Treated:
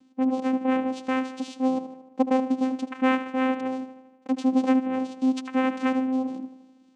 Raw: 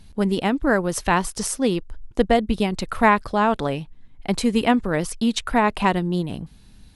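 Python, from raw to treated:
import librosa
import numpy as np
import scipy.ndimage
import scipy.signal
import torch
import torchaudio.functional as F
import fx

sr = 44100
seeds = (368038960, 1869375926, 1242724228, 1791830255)

y = fx.echo_tape(x, sr, ms=77, feedback_pct=63, wet_db=-10.5, lp_hz=3300.0, drive_db=4.0, wow_cents=38)
y = fx.vocoder(y, sr, bands=4, carrier='saw', carrier_hz=260.0)
y = y * 10.0 ** (-3.5 / 20.0)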